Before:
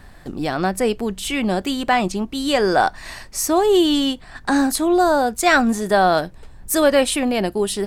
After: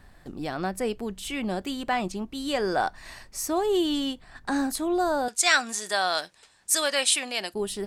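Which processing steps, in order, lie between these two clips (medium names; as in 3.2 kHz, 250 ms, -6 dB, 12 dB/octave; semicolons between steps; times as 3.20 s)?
5.28–7.54 s: frequency weighting ITU-R 468; trim -9 dB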